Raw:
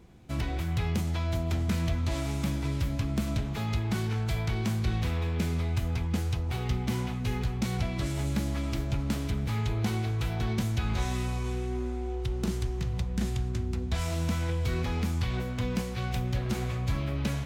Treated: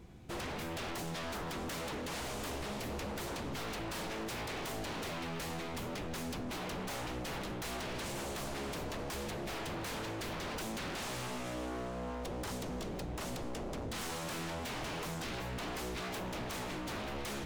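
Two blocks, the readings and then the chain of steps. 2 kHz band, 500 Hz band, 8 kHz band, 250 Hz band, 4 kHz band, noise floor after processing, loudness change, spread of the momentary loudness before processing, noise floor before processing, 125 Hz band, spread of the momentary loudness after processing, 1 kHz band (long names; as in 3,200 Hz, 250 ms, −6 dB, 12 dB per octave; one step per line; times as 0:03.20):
−2.0 dB, −3.0 dB, −0.5 dB, −9.0 dB, −2.0 dB, −41 dBFS, −9.0 dB, 3 LU, −33 dBFS, −17.0 dB, 1 LU, −1.5 dB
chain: wave folding −35 dBFS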